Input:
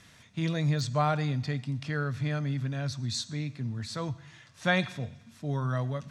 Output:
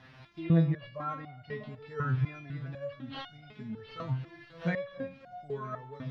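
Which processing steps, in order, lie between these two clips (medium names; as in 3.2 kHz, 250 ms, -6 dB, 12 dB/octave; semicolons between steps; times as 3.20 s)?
in parallel at -0.5 dB: compression, threshold -39 dBFS, peak gain reduction 17.5 dB; on the sum: careless resampling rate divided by 6×, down none, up hold; crackle 200 per s -37 dBFS; distance through air 240 m; on a send: repeats whose band climbs or falls 320 ms, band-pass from 200 Hz, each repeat 1.4 oct, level -10 dB; on the sum: low-pass that closes with the level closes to 2.1 kHz, closed at -22.5 dBFS; filtered feedback delay 275 ms, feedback 34%, low-pass 2.6 kHz, level -15 dB; resonator arpeggio 4 Hz 130–720 Hz; trim +8.5 dB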